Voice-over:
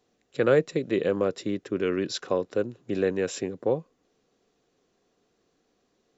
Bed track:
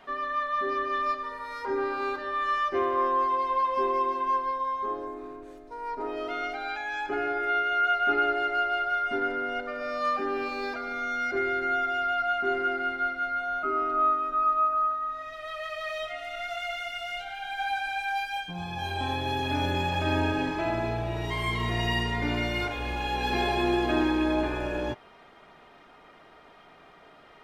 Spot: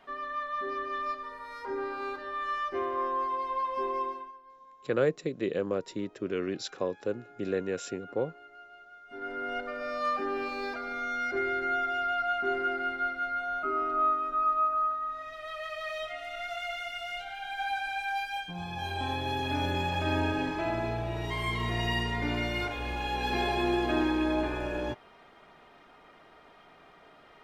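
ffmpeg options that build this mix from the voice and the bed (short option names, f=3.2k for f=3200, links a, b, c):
-filter_complex "[0:a]adelay=4500,volume=-5.5dB[a];[1:a]volume=16.5dB,afade=t=out:st=4.04:d=0.28:silence=0.112202,afade=t=in:st=9.07:d=0.46:silence=0.0794328[b];[a][b]amix=inputs=2:normalize=0"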